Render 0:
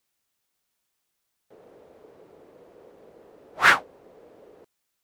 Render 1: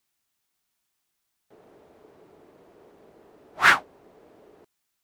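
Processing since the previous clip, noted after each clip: bell 510 Hz -9.5 dB 0.26 oct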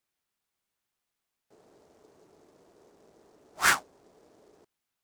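noise-modulated delay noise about 5300 Hz, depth 0.046 ms; gain -6 dB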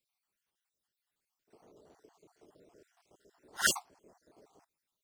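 random spectral dropouts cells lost 53%; pre-echo 54 ms -15 dB

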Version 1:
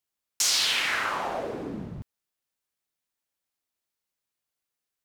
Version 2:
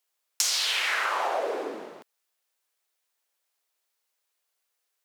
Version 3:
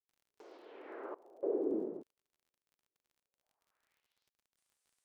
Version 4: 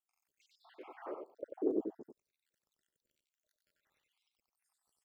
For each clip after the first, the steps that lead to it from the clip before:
HPF 410 Hz 24 dB/oct; compressor 10:1, threshold -30 dBFS, peak gain reduction 10 dB; gain +7 dB
low-pass sweep 350 Hz -> 9100 Hz, 3.16–4.53; random-step tremolo, depth 95%; crackle 47/s -60 dBFS
random spectral dropouts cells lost 73%; echo 93 ms -5 dB; gain +3.5 dB

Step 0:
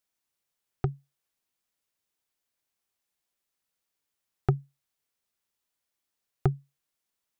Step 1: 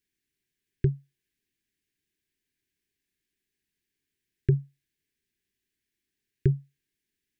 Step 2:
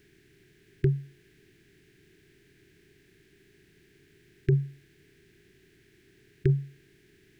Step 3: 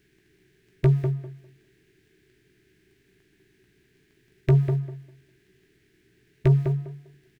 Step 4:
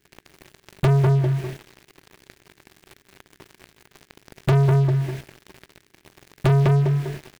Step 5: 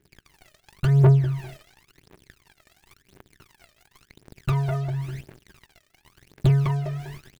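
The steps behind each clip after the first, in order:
Chebyshev band-stop 420–1600 Hz, order 5; high shelf 2700 Hz -11.5 dB; in parallel at +1 dB: negative-ratio compressor -28 dBFS, ratio -1
per-bin compression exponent 0.6; low shelf 170 Hz -9.5 dB; limiter -19 dBFS, peak gain reduction 5.5 dB; gain +7 dB
sample leveller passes 2; doubler 16 ms -7.5 dB; on a send: tape echo 0.199 s, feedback 24%, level -3.5 dB, low-pass 1100 Hz
in parallel at -9.5 dB: hard clip -22 dBFS, distortion -7 dB; on the sum: compressor 1.5:1, threshold -35 dBFS, peak gain reduction 8 dB; sample leveller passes 5; gain +2.5 dB
phaser 0.94 Hz, delay 1.7 ms, feedback 76%; gain -8.5 dB

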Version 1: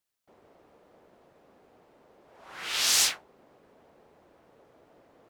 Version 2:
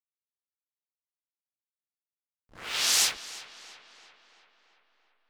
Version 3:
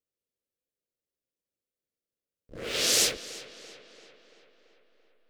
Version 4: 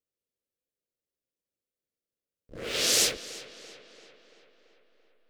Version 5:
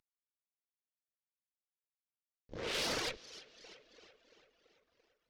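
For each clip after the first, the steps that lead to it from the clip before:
spectral gate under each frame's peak -25 dB strong; backlash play -34 dBFS; tape echo 0.338 s, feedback 64%, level -14 dB, low-pass 4100 Hz
resonant low shelf 670 Hz +9 dB, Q 3
nothing audible
CVSD 32 kbps; reverb removal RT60 1.4 s; tube stage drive 33 dB, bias 0.75; gain +1.5 dB

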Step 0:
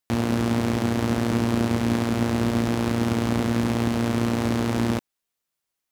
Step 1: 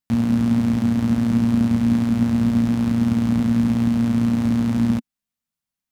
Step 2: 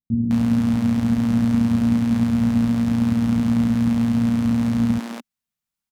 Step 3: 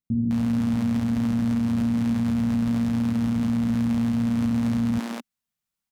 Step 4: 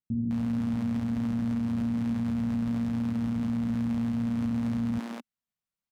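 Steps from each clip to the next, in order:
resonant low shelf 290 Hz +6.5 dB, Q 3; gain -5 dB
bands offset in time lows, highs 0.21 s, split 330 Hz
limiter -17 dBFS, peak gain reduction 8 dB
high shelf 3900 Hz -6 dB; gain -5.5 dB

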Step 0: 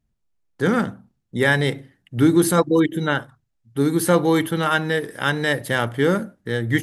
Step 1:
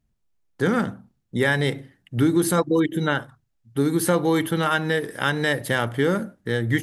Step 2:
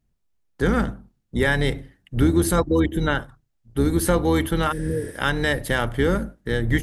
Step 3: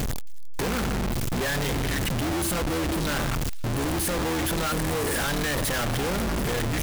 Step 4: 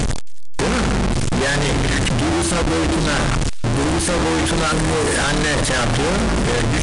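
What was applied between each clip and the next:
compressor 2:1, threshold -20 dBFS, peak gain reduction 5.5 dB; gain +1 dB
octaver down 2 oct, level -2 dB; spectral repair 4.74–5.09, 480–10000 Hz after
infinite clipping; thin delay 0.269 s, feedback 65%, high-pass 3200 Hz, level -20 dB; gain -3.5 dB
gain +8.5 dB; MP2 128 kbps 22050 Hz

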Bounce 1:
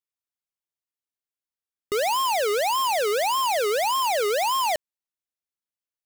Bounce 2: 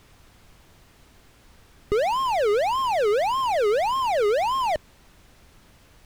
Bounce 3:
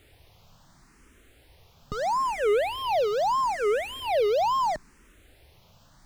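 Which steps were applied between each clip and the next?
power-law curve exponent 0.35; RIAA curve playback
endless phaser +0.76 Hz

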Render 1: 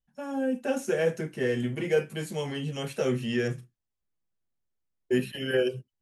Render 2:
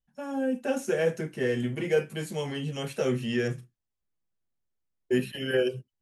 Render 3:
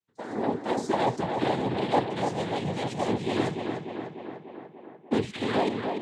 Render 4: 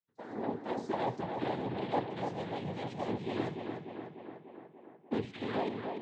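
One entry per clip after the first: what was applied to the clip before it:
nothing audible
noise vocoder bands 6; tape echo 0.295 s, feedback 72%, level -4.5 dB, low-pass 3000 Hz
air absorption 120 m; reverb RT60 1.0 s, pre-delay 6 ms, DRR 18 dB; gain -8 dB

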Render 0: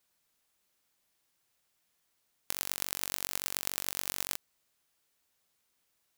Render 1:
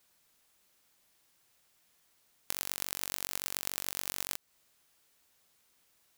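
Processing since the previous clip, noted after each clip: compressor 2.5:1, threshold -38 dBFS, peak gain reduction 8.5 dB; gain +6.5 dB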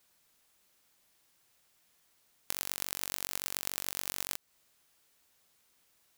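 nothing audible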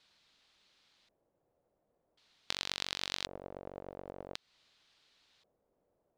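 LFO low-pass square 0.46 Hz 560–4000 Hz; gain +1 dB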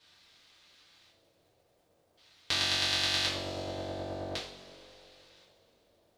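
crackle 120/s -67 dBFS; two-slope reverb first 0.45 s, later 3.3 s, from -18 dB, DRR -8.5 dB

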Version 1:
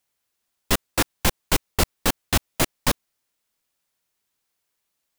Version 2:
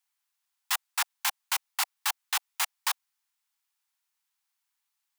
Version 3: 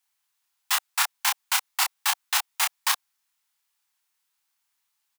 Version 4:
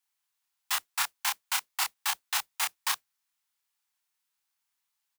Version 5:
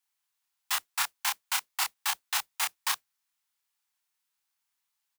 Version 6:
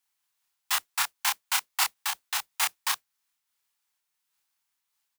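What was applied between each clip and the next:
steep high-pass 770 Hz 72 dB/oct; gain -4.5 dB
doubler 28 ms -3 dB; gain +3.5 dB
modulation noise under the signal 20 dB; gain -5.5 dB
nothing audible
noise-modulated level, depth 55%; gain +5.5 dB

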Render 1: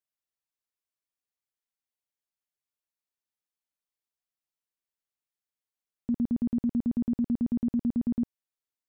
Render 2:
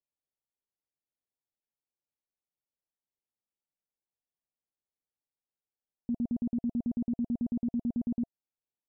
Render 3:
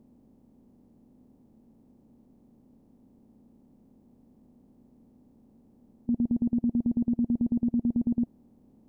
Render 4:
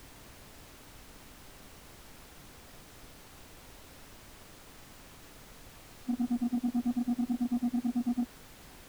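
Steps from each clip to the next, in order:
steep low-pass 890 Hz 48 dB/oct; notch 680 Hz, Q 12; limiter -26 dBFS, peak gain reduction 4 dB
per-bin compression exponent 0.4; gain +4.5 dB
sine-wave speech; soft clip -22.5 dBFS, distortion -17 dB; added noise pink -50 dBFS; gain -2 dB

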